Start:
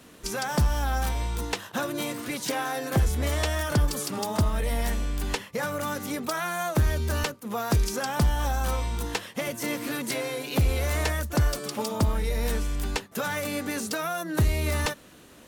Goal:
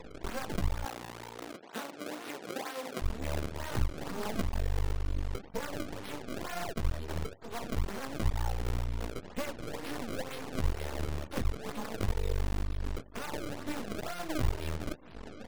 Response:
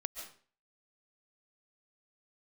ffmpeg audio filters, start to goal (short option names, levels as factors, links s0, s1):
-filter_complex "[0:a]lowpass=11000,asplit=2[s0][s1];[s1]adelay=699.7,volume=0.0355,highshelf=f=4000:g=-15.7[s2];[s0][s2]amix=inputs=2:normalize=0,flanger=delay=15.5:depth=6.8:speed=1.8,acompressor=mode=upward:threshold=0.0631:ratio=2.5[s3];[1:a]atrim=start_sample=2205,atrim=end_sample=3969,asetrate=24255,aresample=44100[s4];[s3][s4]afir=irnorm=-1:irlink=0,flanger=delay=2.1:depth=2.5:regen=11:speed=0.82:shape=sinusoidal,equalizer=f=1600:t=o:w=1.8:g=-3.5,acrusher=samples=28:mix=1:aa=0.000001:lfo=1:lforange=44.8:lforate=2.1,aeval=exprs='max(val(0),0)':c=same,asettb=1/sr,asplit=3[s5][s6][s7];[s5]atrim=end=0.854[s8];[s6]atrim=start=0.85:end=3.02,asetpts=PTS-STARTPTS,afade=t=in:d=0.004:c=qsin,afade=t=out:st=2.166:d=0.004:c=qsin,highpass=280[s9];[s7]atrim=start=3.016[s10];[s8][s9]acrossfade=d=0.004:c1=hsin:c2=qsin[s11];[s11][s10]acrossfade=d=0.004:c1=qsin:c2=hsin,afftfilt=real='re*gte(hypot(re,im),0.00112)':imag='im*gte(hypot(re,im),0.00112)':win_size=1024:overlap=0.75"